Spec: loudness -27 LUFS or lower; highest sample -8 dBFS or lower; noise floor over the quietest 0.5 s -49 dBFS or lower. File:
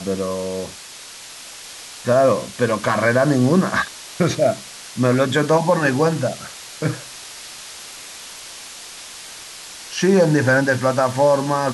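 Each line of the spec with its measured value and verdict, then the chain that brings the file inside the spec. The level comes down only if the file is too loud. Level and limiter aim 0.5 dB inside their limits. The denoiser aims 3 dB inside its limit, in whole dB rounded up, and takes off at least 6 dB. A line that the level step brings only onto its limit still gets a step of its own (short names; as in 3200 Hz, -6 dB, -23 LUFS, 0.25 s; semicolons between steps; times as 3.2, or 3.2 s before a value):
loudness -18.5 LUFS: fail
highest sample -5.5 dBFS: fail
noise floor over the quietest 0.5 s -38 dBFS: fail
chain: denoiser 6 dB, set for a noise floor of -38 dBFS; gain -9 dB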